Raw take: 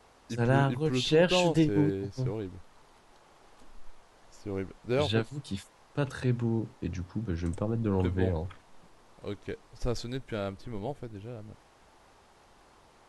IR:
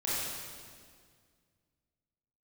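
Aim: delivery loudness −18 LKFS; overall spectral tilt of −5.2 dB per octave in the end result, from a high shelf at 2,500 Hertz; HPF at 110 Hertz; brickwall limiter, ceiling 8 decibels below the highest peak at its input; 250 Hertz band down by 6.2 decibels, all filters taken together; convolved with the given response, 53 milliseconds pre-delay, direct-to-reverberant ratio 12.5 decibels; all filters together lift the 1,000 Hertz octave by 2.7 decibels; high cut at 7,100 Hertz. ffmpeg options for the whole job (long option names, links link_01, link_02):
-filter_complex "[0:a]highpass=110,lowpass=7100,equalizer=frequency=250:width_type=o:gain=-9,equalizer=frequency=1000:width_type=o:gain=5,highshelf=frequency=2500:gain=-5,alimiter=limit=-20dB:level=0:latency=1,asplit=2[link_01][link_02];[1:a]atrim=start_sample=2205,adelay=53[link_03];[link_02][link_03]afir=irnorm=-1:irlink=0,volume=-20dB[link_04];[link_01][link_04]amix=inputs=2:normalize=0,volume=17dB"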